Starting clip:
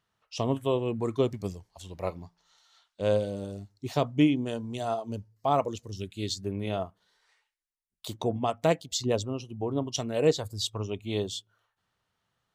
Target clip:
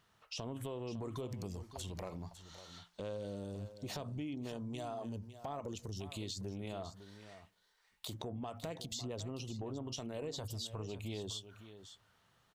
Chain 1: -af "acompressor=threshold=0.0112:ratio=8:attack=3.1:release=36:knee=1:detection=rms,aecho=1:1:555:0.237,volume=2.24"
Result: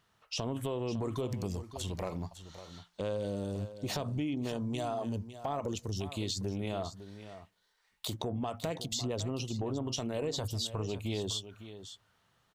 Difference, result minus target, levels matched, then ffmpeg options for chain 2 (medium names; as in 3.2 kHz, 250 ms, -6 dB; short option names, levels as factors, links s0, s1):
compression: peak gain reduction -7.5 dB
-af "acompressor=threshold=0.00422:ratio=8:attack=3.1:release=36:knee=1:detection=rms,aecho=1:1:555:0.237,volume=2.24"